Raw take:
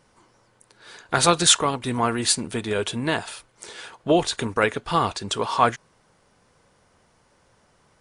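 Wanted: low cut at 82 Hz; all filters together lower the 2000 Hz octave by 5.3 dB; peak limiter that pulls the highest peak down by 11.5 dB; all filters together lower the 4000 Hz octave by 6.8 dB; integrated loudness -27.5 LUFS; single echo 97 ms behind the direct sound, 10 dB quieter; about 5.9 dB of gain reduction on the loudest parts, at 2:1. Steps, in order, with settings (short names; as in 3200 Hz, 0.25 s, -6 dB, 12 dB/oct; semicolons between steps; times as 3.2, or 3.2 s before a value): HPF 82 Hz; bell 2000 Hz -6 dB; bell 4000 Hz -6.5 dB; compressor 2:1, threshold -24 dBFS; limiter -20 dBFS; echo 97 ms -10 dB; gain +4 dB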